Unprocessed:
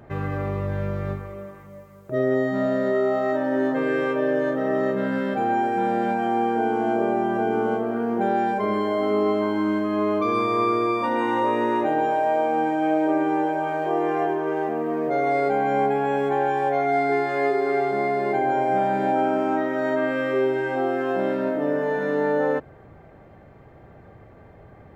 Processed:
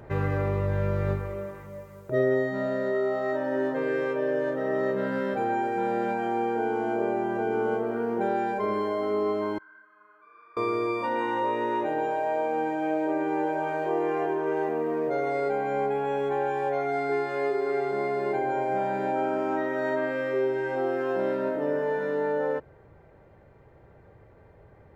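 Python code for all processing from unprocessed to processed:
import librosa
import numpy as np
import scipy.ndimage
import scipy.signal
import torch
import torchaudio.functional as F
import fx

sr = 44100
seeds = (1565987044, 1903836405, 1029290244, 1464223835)

y = fx.chain(x, sr, fx.bandpass_q(hz=1500.0, q=15.0),
    fx.detune_double(cents=38), at=(9.58, 10.57))
y = y + 0.35 * np.pad(y, (int(2.1 * sr / 1000.0), 0))[:len(y)]
y = fx.rider(y, sr, range_db=10, speed_s=0.5)
y = y * 10.0 ** (-4.5 / 20.0)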